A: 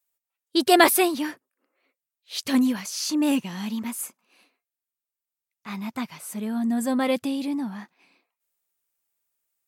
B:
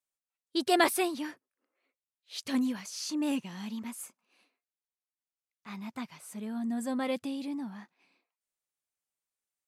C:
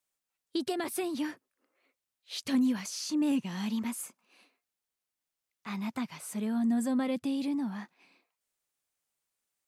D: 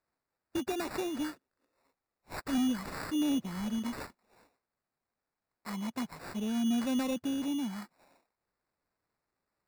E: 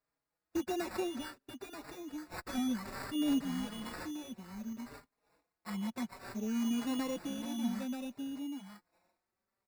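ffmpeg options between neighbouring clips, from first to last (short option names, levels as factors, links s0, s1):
-af "lowpass=11000,volume=0.376"
-filter_complex "[0:a]alimiter=limit=0.0794:level=0:latency=1:release=145,acrossover=split=290[s0][s1];[s1]acompressor=threshold=0.00708:ratio=3[s2];[s0][s2]amix=inputs=2:normalize=0,volume=2"
-af "acrusher=samples=14:mix=1:aa=0.000001,aeval=exprs='0.0708*(abs(mod(val(0)/0.0708+3,4)-2)-1)':c=same,volume=0.841"
-filter_complex "[0:a]aecho=1:1:934:0.447,asplit=2[s0][s1];[s1]adelay=4.5,afreqshift=0.6[s2];[s0][s2]amix=inputs=2:normalize=1"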